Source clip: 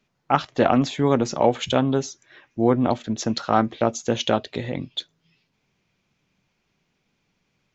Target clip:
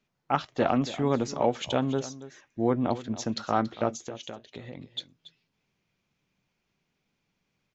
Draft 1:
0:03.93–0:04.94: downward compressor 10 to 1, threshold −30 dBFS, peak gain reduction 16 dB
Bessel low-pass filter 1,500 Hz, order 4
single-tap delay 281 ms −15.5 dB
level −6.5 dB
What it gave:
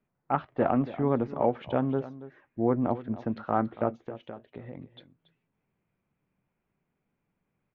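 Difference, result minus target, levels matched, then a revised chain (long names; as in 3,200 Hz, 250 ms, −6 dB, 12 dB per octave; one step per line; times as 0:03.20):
2,000 Hz band −4.0 dB
0:03.93–0:04.94: downward compressor 10 to 1, threshold −30 dBFS, peak gain reduction 16 dB
single-tap delay 281 ms −15.5 dB
level −6.5 dB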